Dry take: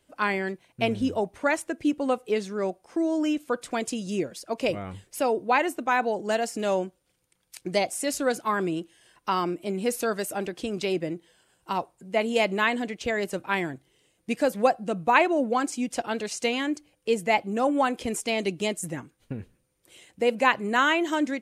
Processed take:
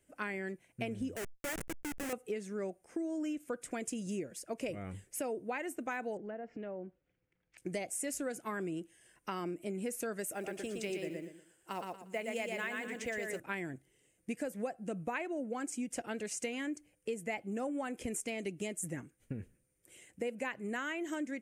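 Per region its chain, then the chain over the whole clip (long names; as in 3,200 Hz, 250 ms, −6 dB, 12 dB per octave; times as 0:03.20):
0:01.16–0:02.13: comparator with hysteresis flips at −28 dBFS + low-shelf EQ 300 Hz −11.5 dB + level that may fall only so fast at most 120 dB per second
0:06.17–0:07.58: Bessel low-pass filter 2,500 Hz, order 4 + treble cut that deepens with the level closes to 1,200 Hz, closed at −21.5 dBFS + downward compressor 2.5 to 1, threshold −37 dBFS
0:10.32–0:13.40: low-shelf EQ 260 Hz −10 dB + floating-point word with a short mantissa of 4 bits + repeating echo 117 ms, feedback 26%, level −3.5 dB
whole clip: octave-band graphic EQ 1,000/2,000/4,000/8,000 Hz −9/+4/−12/+5 dB; downward compressor, threshold −30 dBFS; level −4.5 dB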